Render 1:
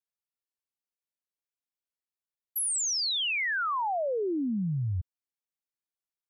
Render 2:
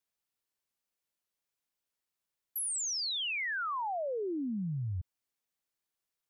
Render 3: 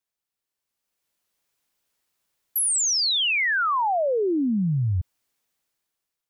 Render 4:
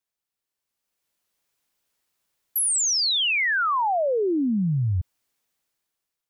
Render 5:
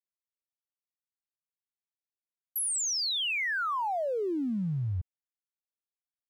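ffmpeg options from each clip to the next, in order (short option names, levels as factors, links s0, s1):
-af "alimiter=level_in=4.47:limit=0.0631:level=0:latency=1:release=37,volume=0.224,volume=1.88"
-af "dynaudnorm=f=270:g=7:m=3.98"
-af anull
-af "aeval=exprs='sgn(val(0))*max(abs(val(0))-0.00316,0)':c=same,volume=0.422"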